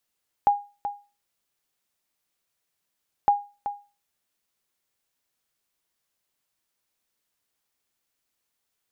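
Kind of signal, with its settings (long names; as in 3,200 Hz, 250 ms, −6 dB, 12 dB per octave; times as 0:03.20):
ping with an echo 816 Hz, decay 0.31 s, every 2.81 s, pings 2, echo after 0.38 s, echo −11 dB −11 dBFS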